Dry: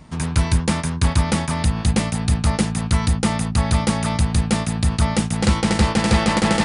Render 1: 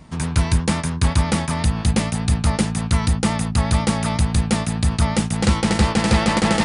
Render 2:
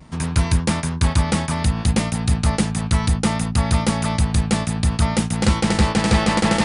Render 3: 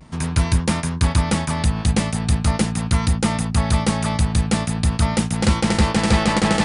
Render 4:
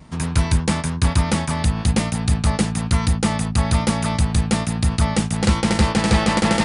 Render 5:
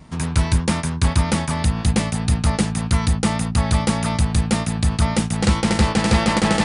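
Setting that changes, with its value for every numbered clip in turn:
vibrato, rate: 8.2, 0.62, 0.42, 1.1, 1.8 Hz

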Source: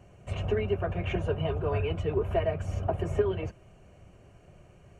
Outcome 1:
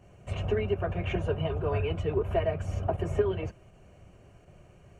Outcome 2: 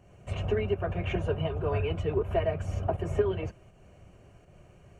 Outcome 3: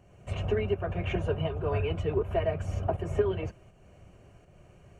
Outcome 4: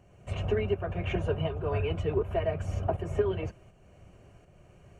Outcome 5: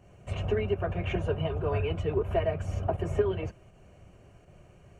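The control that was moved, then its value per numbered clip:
pump, release: 63, 183, 328, 537, 105 ms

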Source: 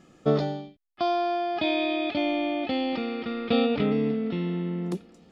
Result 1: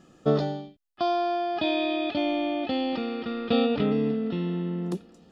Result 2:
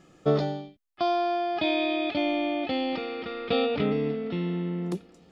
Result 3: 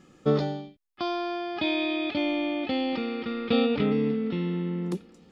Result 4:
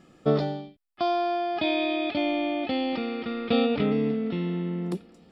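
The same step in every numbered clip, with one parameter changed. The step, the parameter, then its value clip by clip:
notch, frequency: 2200, 230, 670, 6400 Hz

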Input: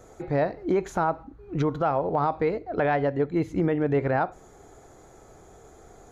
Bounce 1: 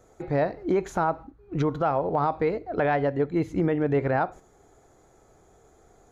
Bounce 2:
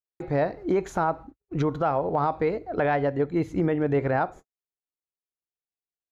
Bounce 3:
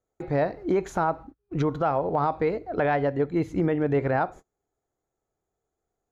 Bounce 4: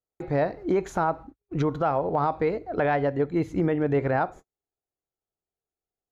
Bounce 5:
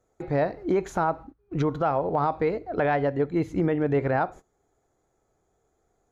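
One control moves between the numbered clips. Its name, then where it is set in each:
gate, range: -7, -60, -33, -46, -21 dB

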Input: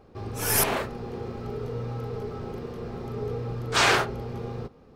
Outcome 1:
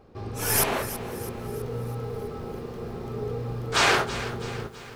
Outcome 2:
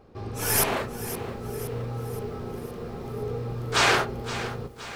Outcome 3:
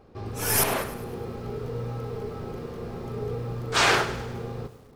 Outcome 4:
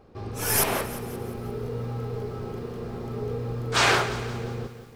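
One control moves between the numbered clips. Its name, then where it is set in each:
lo-fi delay, time: 0.328, 0.519, 0.102, 0.175 s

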